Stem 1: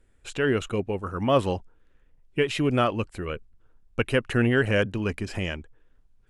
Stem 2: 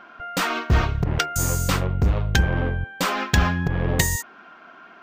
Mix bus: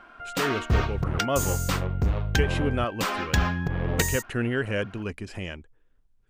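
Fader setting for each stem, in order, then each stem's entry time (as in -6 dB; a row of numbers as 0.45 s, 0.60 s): -5.0 dB, -4.5 dB; 0.00 s, 0.00 s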